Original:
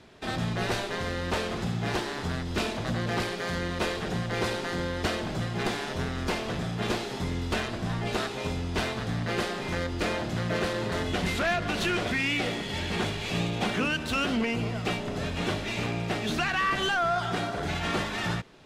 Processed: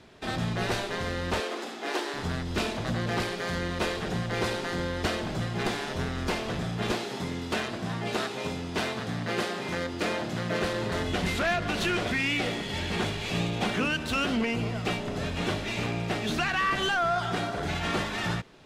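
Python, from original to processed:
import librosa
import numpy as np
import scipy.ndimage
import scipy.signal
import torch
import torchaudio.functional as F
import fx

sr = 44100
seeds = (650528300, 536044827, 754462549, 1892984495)

y = fx.steep_highpass(x, sr, hz=260.0, slope=48, at=(1.4, 2.14))
y = fx.highpass(y, sr, hz=130.0, slope=12, at=(6.93, 10.62))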